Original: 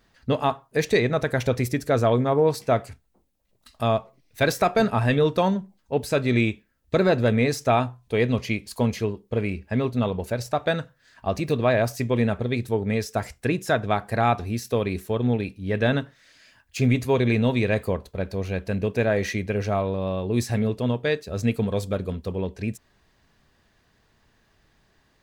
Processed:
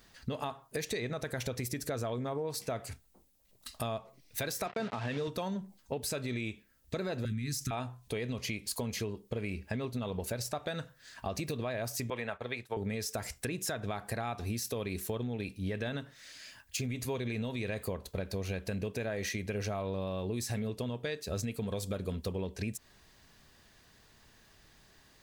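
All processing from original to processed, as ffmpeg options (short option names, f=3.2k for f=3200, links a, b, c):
-filter_complex "[0:a]asettb=1/sr,asplit=3[a][b][c];[a]atrim=end=4.664[d];[b]atrim=start=4.66:end=5.28,asetpts=PTS-STARTPTS,afade=t=in:d=0.004:c=qsin,afade=t=out:st=0.616:d=0.004:c=qsin,acrusher=bits=4:mix=0:aa=0.5,highpass=120,lowpass=3.4k[e];[c]atrim=start=5.276[f];[d][e]acrossfade=d=0.004:c1=hsin:c2=qsin[g];[g][f]acrossfade=d=0.004:c1=qsin:c2=hsin,asettb=1/sr,asplit=3[h][i][j];[h]atrim=end=7.254[k];[i]atrim=start=7.25:end=7.71,asetpts=PTS-STARTPTS,afade=t=in:d=0.004:c=qsin,afade=t=out:st=0.456:d=0.004:c=qsin,asuperstop=centerf=670:order=8:qfactor=0.77,bass=f=250:g=12,treble=f=4k:g=7[l];[j]atrim=start=7.706[m];[k][l]acrossfade=d=0.004:c1=hsin:c2=qsin[n];[n][m]acrossfade=d=0.004:c1=qsin:c2=hsin,asettb=1/sr,asplit=3[o][p][q];[o]atrim=end=12.104[r];[p]atrim=start=12.1:end=12.77,asetpts=PTS-STARTPTS,afade=t=in:d=0.004:c=qsin,afade=t=out:st=0.666:d=0.004:c=qsin,agate=range=-33dB:threshold=-30dB:ratio=3:release=100:detection=peak,acrossover=split=580 2900:gain=0.158 1 0.251[s][t][u];[s][t][u]amix=inputs=3:normalize=0[v];[q]atrim=start=12.766[w];[r][v]acrossfade=d=0.004:c1=hsin:c2=qsin[x];[x][w]acrossfade=d=0.004:c1=qsin:c2=hsin,highshelf=f=3.7k:g=10,alimiter=limit=-21dB:level=0:latency=1:release=259,acompressor=threshold=-32dB:ratio=6"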